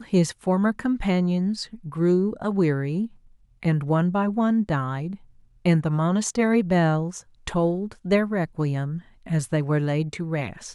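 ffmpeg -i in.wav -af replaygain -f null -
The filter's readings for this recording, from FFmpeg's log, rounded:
track_gain = +4.3 dB
track_peak = 0.267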